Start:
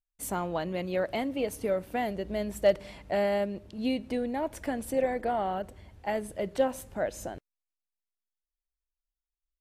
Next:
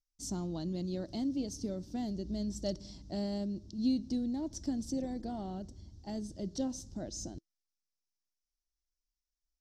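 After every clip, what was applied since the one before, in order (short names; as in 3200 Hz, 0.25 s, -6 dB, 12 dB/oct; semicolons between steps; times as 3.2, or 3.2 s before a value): EQ curve 330 Hz 0 dB, 470 Hz -16 dB, 710 Hz -15 dB, 2400 Hz -24 dB, 3700 Hz -4 dB, 5600 Hz +10 dB, 11000 Hz -20 dB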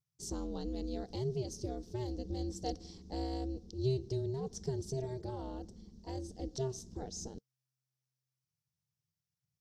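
ring modulator 130 Hz; gain +1 dB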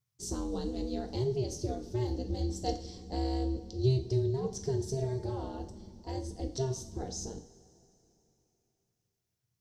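two-slope reverb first 0.44 s, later 3.2 s, from -19 dB, DRR 3.5 dB; gain +3 dB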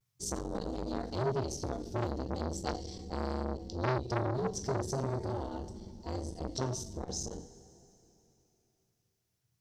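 vibrato 0.42 Hz 29 cents; core saturation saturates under 1200 Hz; gain +3.5 dB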